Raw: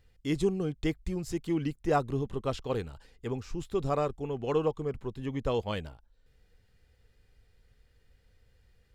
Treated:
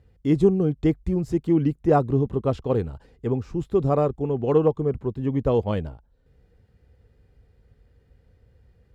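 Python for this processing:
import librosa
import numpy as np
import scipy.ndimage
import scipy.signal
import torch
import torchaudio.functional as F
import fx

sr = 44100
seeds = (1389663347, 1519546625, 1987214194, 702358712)

y = scipy.signal.sosfilt(scipy.signal.butter(2, 52.0, 'highpass', fs=sr, output='sos'), x)
y = fx.tilt_shelf(y, sr, db=8.5, hz=1300.0)
y = fx.cheby_harmonics(y, sr, harmonics=(3, 5), levels_db=(-29, -42), full_scale_db=-9.0)
y = y * 10.0 ** (3.0 / 20.0)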